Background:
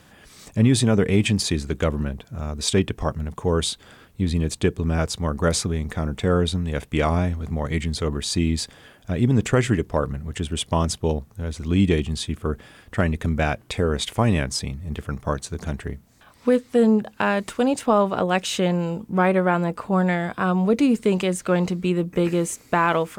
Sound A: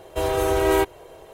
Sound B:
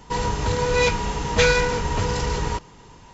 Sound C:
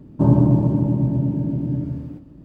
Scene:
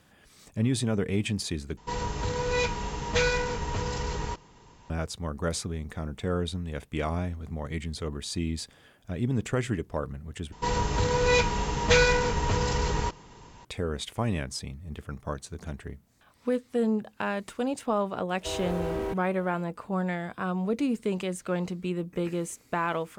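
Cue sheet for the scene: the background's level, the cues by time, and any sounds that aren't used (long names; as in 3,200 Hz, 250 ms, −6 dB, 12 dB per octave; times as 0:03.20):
background −9 dB
0:01.77: overwrite with B −7.5 dB
0:10.52: overwrite with B −3 dB
0:18.29: mix in A −10.5 dB + slew-rate limiting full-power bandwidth 64 Hz
not used: C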